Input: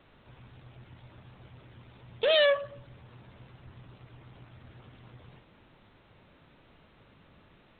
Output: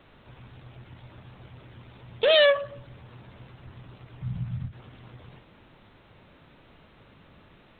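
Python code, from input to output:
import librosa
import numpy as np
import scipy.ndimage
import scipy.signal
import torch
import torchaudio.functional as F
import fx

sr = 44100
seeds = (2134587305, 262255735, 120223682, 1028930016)

y = fx.low_shelf_res(x, sr, hz=240.0, db=12.5, q=3.0, at=(4.21, 4.71), fade=0.02)
y = fx.end_taper(y, sr, db_per_s=210.0)
y = y * 10.0 ** (4.5 / 20.0)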